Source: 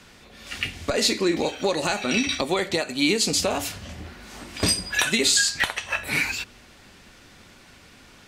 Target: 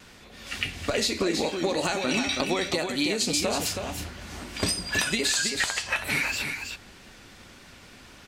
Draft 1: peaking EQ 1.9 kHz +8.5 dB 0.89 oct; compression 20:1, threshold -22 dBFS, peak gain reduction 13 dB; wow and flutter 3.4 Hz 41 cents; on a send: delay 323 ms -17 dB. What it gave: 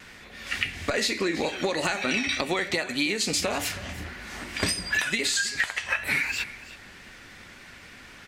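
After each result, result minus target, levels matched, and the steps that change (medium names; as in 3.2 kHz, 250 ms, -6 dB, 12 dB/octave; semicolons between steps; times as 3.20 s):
echo-to-direct -11 dB; 2 kHz band +2.5 dB
change: delay 323 ms -6 dB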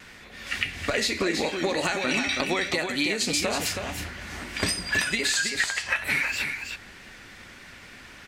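2 kHz band +3.0 dB
remove: peaking EQ 1.9 kHz +8.5 dB 0.89 oct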